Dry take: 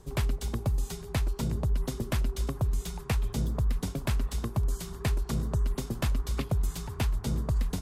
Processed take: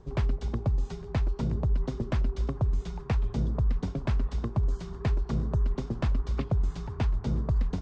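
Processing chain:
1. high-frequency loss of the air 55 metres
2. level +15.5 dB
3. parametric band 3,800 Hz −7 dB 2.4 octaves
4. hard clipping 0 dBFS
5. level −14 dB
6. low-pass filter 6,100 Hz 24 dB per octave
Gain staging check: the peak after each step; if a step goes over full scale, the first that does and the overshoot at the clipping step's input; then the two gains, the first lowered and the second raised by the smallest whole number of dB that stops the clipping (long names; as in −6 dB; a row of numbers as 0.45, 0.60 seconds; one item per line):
−17.0, −1.5, −2.0, −2.0, −16.0, −16.0 dBFS
no step passes full scale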